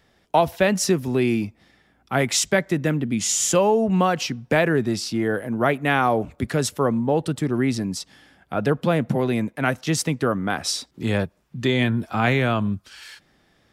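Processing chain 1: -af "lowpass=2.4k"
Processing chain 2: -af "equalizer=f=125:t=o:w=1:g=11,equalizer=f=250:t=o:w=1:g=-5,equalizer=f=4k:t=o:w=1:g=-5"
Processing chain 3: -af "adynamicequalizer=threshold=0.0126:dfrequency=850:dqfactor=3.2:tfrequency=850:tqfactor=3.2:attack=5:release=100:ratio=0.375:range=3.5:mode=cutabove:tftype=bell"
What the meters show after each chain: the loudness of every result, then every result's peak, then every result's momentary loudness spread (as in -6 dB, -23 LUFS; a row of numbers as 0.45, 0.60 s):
-23.0, -20.5, -22.5 LUFS; -5.5, -5.0, -5.5 dBFS; 8, 7, 7 LU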